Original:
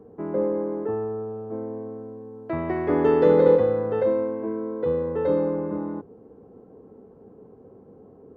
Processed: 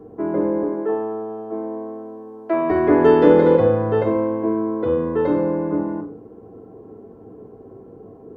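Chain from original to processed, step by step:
0:00.63–0:02.71: Bessel high-pass filter 270 Hz, order 8
convolution reverb, pre-delay 3 ms, DRR 1.5 dB
level +4.5 dB

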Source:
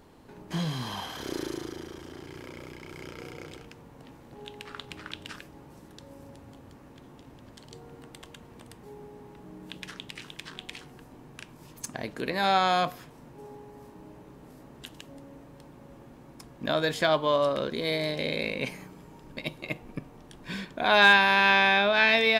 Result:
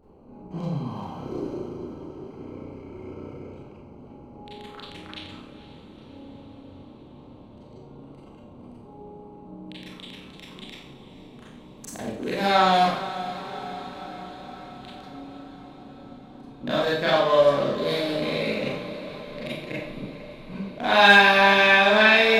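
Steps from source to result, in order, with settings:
adaptive Wiener filter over 25 samples
feedback delay with all-pass diffusion 472 ms, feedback 68%, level −13.5 dB
four-comb reverb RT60 0.62 s, combs from 29 ms, DRR −7.5 dB
level −3 dB

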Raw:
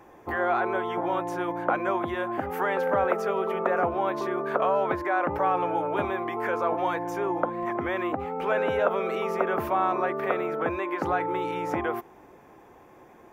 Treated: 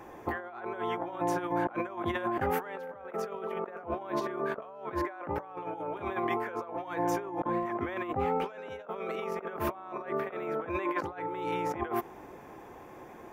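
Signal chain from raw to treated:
0:08.44–0:08.84: parametric band 5,600 Hz +13 dB → +7 dB 1.2 octaves
compressor whose output falls as the input rises −32 dBFS, ratio −0.5
level −1.5 dB

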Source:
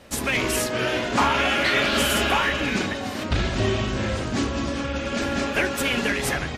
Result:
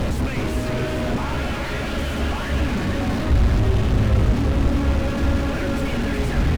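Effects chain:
sign of each sample alone
RIAA equalisation playback
on a send: single-tap delay 365 ms −6.5 dB
on the sum: level −4 dB

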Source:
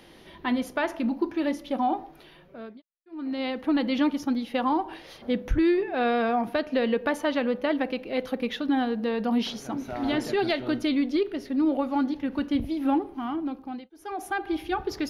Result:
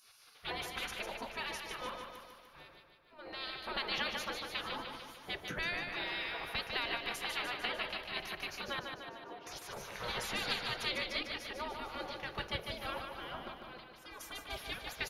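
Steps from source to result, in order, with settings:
0:08.79–0:09.47: resonant band-pass 360 Hz, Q 2.1
gate on every frequency bin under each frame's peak −20 dB weak
repeating echo 149 ms, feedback 58%, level −5.5 dB
level +1 dB

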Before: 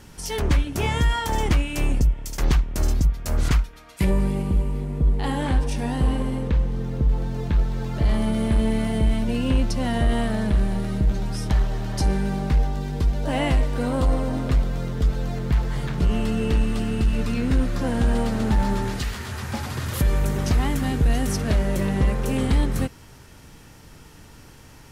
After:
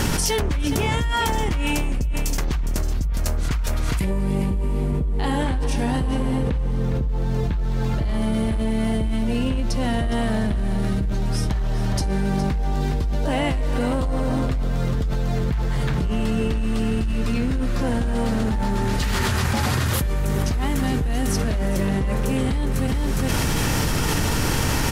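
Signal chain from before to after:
on a send: single-tap delay 411 ms −13 dB
on the sum: envelope flattener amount 100%
level −7 dB

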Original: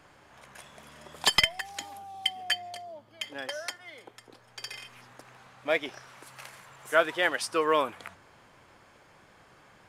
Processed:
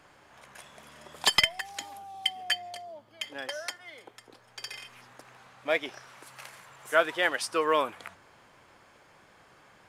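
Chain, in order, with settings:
low-shelf EQ 230 Hz −4 dB

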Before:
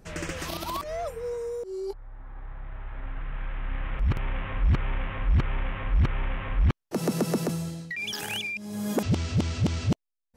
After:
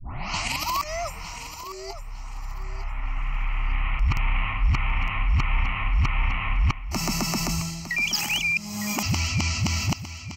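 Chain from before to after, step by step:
turntable start at the beginning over 0.67 s
tilt shelving filter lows −7.5 dB, about 890 Hz
phaser with its sweep stopped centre 2,400 Hz, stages 8
reversed playback
downward compressor, threshold −30 dBFS, peak gain reduction 5.5 dB
reversed playback
low-shelf EQ 100 Hz +6 dB
on a send: repeating echo 907 ms, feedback 24%, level −12 dB
on the sum: level +8 dB

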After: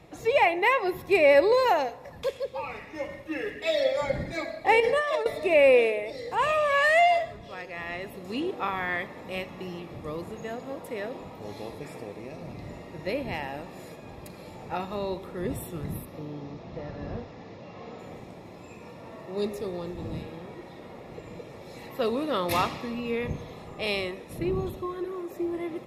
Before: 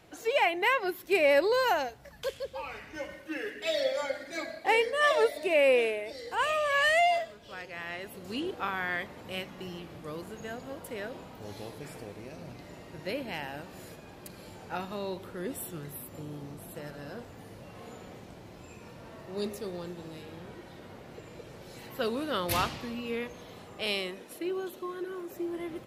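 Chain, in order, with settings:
0:16.05–0:17.99: linear delta modulator 32 kbit/s, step −56 dBFS
wind on the microphone 110 Hz −44 dBFS
high-shelf EQ 4,400 Hz −7.5 dB
notch comb filter 1,500 Hz
convolution reverb RT60 1.4 s, pre-delay 3 ms, DRR 17 dB
0:04.80–0:05.26: compressor whose output falls as the input rises −31 dBFS, ratio −1
level +5 dB

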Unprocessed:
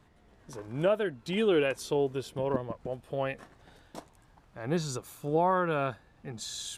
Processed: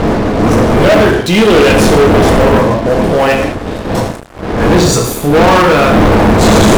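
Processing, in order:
wind on the microphone 470 Hz −31 dBFS
reverb whose tail is shaped and stops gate 230 ms falling, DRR 0 dB
leveller curve on the samples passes 5
level +6 dB

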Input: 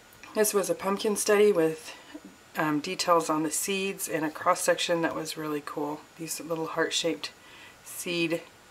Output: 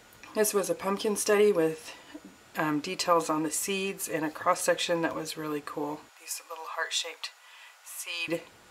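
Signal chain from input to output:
0:06.09–0:08.28: high-pass filter 700 Hz 24 dB per octave
level −1.5 dB

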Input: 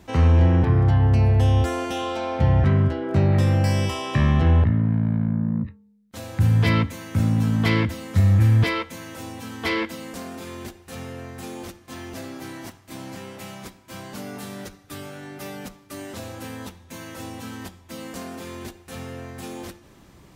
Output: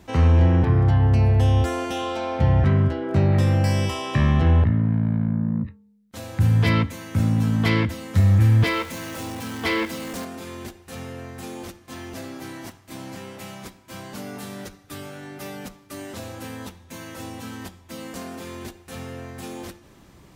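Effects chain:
0:08.15–0:10.25: converter with a step at zero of −34 dBFS

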